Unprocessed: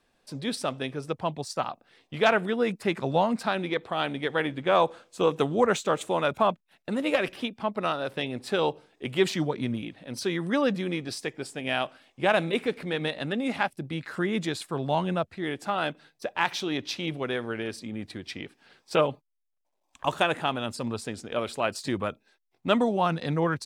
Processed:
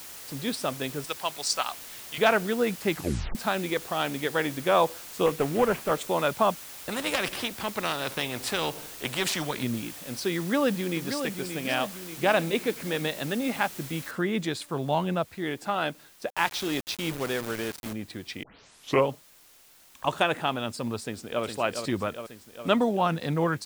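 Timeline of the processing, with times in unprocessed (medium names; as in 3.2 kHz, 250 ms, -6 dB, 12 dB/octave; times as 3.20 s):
1.04–2.18 s: frequency weighting ITU-R 468
2.91 s: tape stop 0.44 s
5.26–5.91 s: CVSD coder 16 kbps
6.89–9.63 s: spectrum-flattening compressor 2:1
10.38–11.16 s: echo throw 580 ms, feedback 55%, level -7.5 dB
14.11 s: noise floor step -43 dB -56 dB
16.30–17.93 s: word length cut 6-bit, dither none
18.43 s: tape start 0.65 s
21.02–21.44 s: echo throw 410 ms, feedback 70%, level -6.5 dB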